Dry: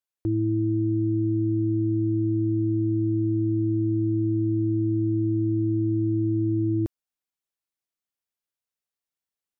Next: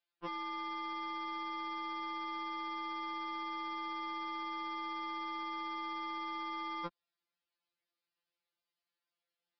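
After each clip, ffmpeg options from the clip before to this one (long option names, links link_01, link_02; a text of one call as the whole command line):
ffmpeg -i in.wav -af "highpass=210,aresample=11025,aeval=exprs='0.0299*(abs(mod(val(0)/0.0299+3,4)-2)-1)':channel_layout=same,aresample=44100,afftfilt=real='re*2.83*eq(mod(b,8),0)':imag='im*2.83*eq(mod(b,8),0)':win_size=2048:overlap=0.75,volume=6dB" out.wav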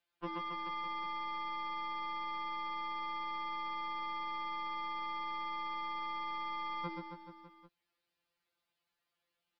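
ffmpeg -i in.wav -filter_complex "[0:a]bass=frequency=250:gain=1,treble=frequency=4000:gain=-6,acrossover=split=340[link_01][link_02];[link_02]acompressor=threshold=-46dB:ratio=6[link_03];[link_01][link_03]amix=inputs=2:normalize=0,aecho=1:1:130|273|430.3|603.3|793.7:0.631|0.398|0.251|0.158|0.1,volume=5dB" out.wav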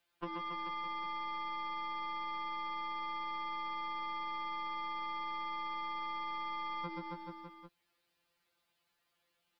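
ffmpeg -i in.wav -af "acompressor=threshold=-44dB:ratio=6,volume=6dB" out.wav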